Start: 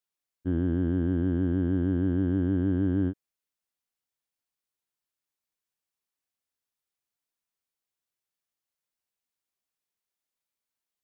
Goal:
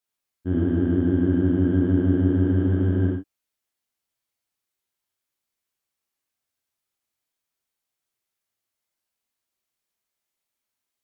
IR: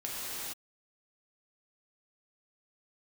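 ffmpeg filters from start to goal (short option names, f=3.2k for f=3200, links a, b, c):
-filter_complex "[1:a]atrim=start_sample=2205,atrim=end_sample=4410,asetrate=41895,aresample=44100[a];[0:a][a]afir=irnorm=-1:irlink=0,volume=5dB"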